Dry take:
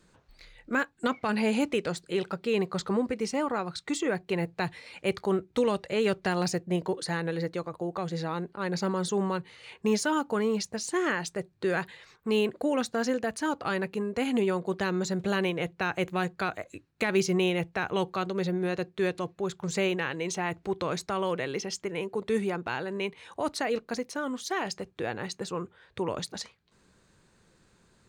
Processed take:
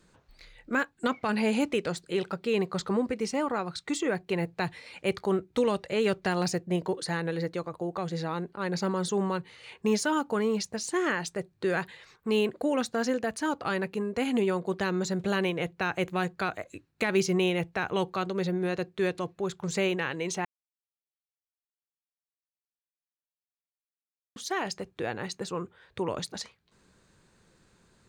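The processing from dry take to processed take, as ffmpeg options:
-filter_complex "[0:a]asplit=3[a][b][c];[a]atrim=end=20.45,asetpts=PTS-STARTPTS,afade=t=out:st=20.446:d=0.004:c=hsin[d];[b]atrim=start=20.45:end=24.36,asetpts=PTS-STARTPTS,volume=0[e];[c]atrim=start=24.36,asetpts=PTS-STARTPTS,afade=t=in:d=0.004:c=hsin[f];[d][e][f]concat=n=3:v=0:a=1"

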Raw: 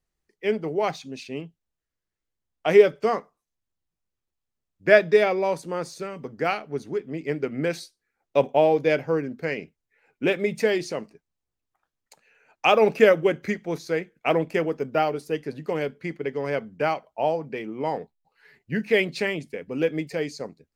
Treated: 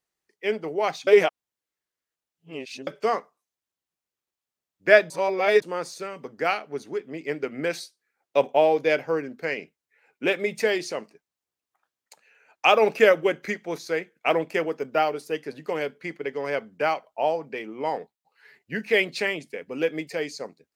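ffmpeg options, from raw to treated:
-filter_complex "[0:a]asplit=5[a][b][c][d][e];[a]atrim=end=1.072[f];[b]atrim=start=1.068:end=2.872,asetpts=PTS-STARTPTS,areverse[g];[c]atrim=start=2.868:end=5.102[h];[d]atrim=start=5.098:end=5.622,asetpts=PTS-STARTPTS,areverse[i];[e]atrim=start=5.618[j];[f][g]acrossfade=d=0.004:c1=hsin:c2=hsin[k];[k][h]acrossfade=d=0.004:c1=hsin:c2=hsin[l];[l][i]acrossfade=d=0.004:c1=hsin:c2=hsin[m];[m][j]acrossfade=d=0.004:c1=hsin:c2=hsin,highpass=f=490:p=1,volume=2dB"

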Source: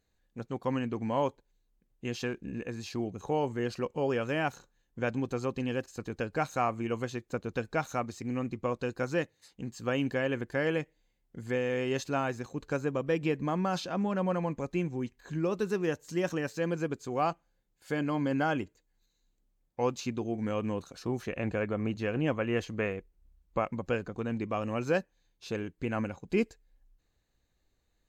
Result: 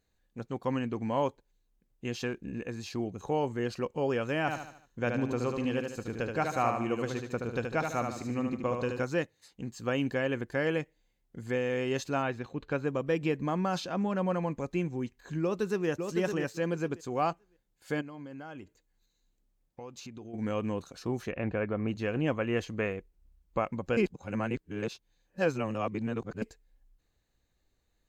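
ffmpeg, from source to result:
-filter_complex "[0:a]asettb=1/sr,asplit=3[a][b][c];[a]atrim=end=4.404[d];[b]atrim=start=4.4:end=9.03,asetpts=PTS-STARTPTS,afade=t=in:d=0.004:c=qsin,afade=t=out:st=4.626:d=0.004:c=qsin,aecho=1:1:75|150|225|300|375:0.562|0.247|0.109|0.0479|0.0211,atrim=end_sample=204183[e];[c]atrim=start=9.026[f];[d][e]acrossfade=d=0.004:c1=hsin:c2=qsin[g];[g][f]acrossfade=d=0.004:c1=qsin:c2=hsin,asettb=1/sr,asplit=3[h][i][j];[h]atrim=end=12.224[k];[i]atrim=start=12.22:end=12.85,asetpts=PTS-STARTPTS,afade=t=in:d=0.004:c=qsin,afade=t=out:st=0.626:d=0.004:c=qsin,highshelf=f=4.7k:t=q:w=1.5:g=-10[l];[j]atrim=start=12.846[m];[k][l]acrossfade=d=0.004:c1=hsin:c2=qsin[n];[n][m]acrossfade=d=0.004:c1=qsin:c2=hsin,asplit=2[o][p];[p]afade=t=in:st=15.42:d=0.01,afade=t=out:st=15.88:d=0.01,aecho=0:1:560|1120|1680:0.530884|0.0796327|0.0119449[q];[o][q]amix=inputs=2:normalize=0,asplit=3[r][s][t];[r]afade=t=out:st=18:d=0.02[u];[s]acompressor=threshold=-43dB:ratio=4:attack=3.2:release=140:knee=1:detection=peak,afade=t=in:st=18:d=0.02,afade=t=out:st=20.33:d=0.02[v];[t]afade=t=in:st=20.33:d=0.02[w];[u][v][w]amix=inputs=3:normalize=0,asettb=1/sr,asplit=3[x][y][z];[x]atrim=end=21.314[aa];[y]atrim=start=21.31:end=21.88,asetpts=PTS-STARTPTS,afade=t=in:d=0.004:c=qsin,afade=t=out:st=0.566:d=0.004:c=qsin,lowpass=2.8k[ab];[z]atrim=start=21.876[ac];[aa][ab]acrossfade=d=0.004:c1=hsin:c2=qsin[ad];[ad][ac]acrossfade=d=0.004:c1=qsin:c2=hsin,asplit=3[ae][af][ag];[ae]atrim=end=23.972[ah];[af]atrim=start=23.968:end=26.422,asetpts=PTS-STARTPTS,areverse[ai];[ag]atrim=start=26.418[aj];[ah][ai]acrossfade=d=0.004:c1=hsin:c2=hsin[ak];[ak][aj]acrossfade=d=0.004:c1=hsin:c2=hsin"

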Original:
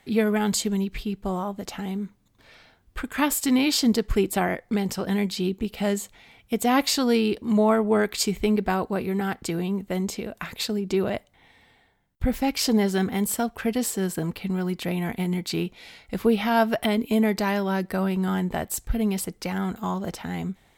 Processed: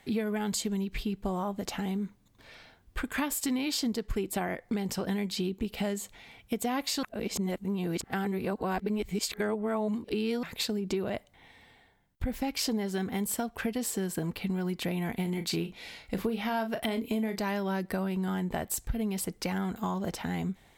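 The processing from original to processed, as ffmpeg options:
-filter_complex "[0:a]asettb=1/sr,asplit=3[a][b][c];[a]atrim=end=15.234[d];[b]atrim=start=15.23:end=17.4,asetpts=PTS-STARTPTS,afade=t=in:d=0.004:c=qsin,afade=t=out:st=2.166:d=0.004:c=qsin,asplit=2[e][f];[f]adelay=36,volume=-10dB[g];[e][g]amix=inputs=2:normalize=0,atrim=end_sample=95697[h];[c]atrim=start=17.396[i];[d][h]acrossfade=d=0.004:c1=hsin:c2=qsin[j];[j][i]acrossfade=d=0.004:c1=qsin:c2=hsin,asplit=3[k][l][m];[k]atrim=end=7.032[n];[l]atrim=start=7.028:end=10.432,asetpts=PTS-STARTPTS,areverse[o];[m]atrim=start=10.428[p];[n][o]acrossfade=d=0.004:c1=hsin:c2=hsin[q];[q][p]acrossfade=d=0.004:c1=hsin:c2=hsin,bandreject=f=1.3k:w=24,acompressor=threshold=-28dB:ratio=6"

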